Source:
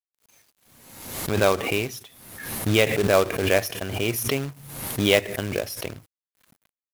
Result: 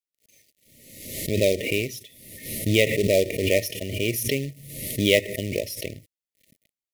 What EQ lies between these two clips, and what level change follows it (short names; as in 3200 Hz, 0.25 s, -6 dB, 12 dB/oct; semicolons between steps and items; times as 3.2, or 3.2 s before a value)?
brick-wall FIR band-stop 660–1800 Hz; 0.0 dB